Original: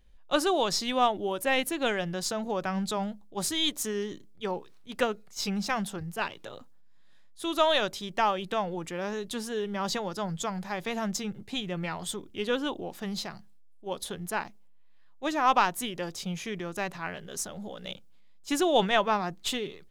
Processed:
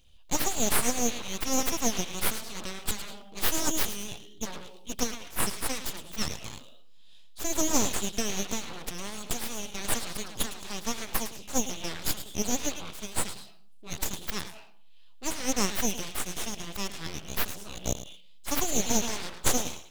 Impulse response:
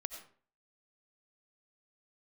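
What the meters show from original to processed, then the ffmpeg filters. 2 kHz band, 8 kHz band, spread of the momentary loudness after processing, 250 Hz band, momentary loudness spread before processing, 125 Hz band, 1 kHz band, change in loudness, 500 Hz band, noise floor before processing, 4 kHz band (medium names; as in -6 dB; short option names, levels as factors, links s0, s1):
-3.5 dB, +9.0 dB, 12 LU, -1.5 dB, 12 LU, -1.5 dB, -7.5 dB, -1.0 dB, -6.5 dB, -51 dBFS, -1.5 dB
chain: -filter_complex "[0:a]asplit=2[s0][s1];[1:a]atrim=start_sample=2205,adelay=108[s2];[s1][s2]afir=irnorm=-1:irlink=0,volume=0.282[s3];[s0][s3]amix=inputs=2:normalize=0,afftfilt=real='re*lt(hypot(re,im),0.141)':imag='im*lt(hypot(re,im),0.141)':win_size=1024:overlap=0.75,highshelf=f=2300:t=q:w=3:g=8,aeval=exprs='abs(val(0))':c=same"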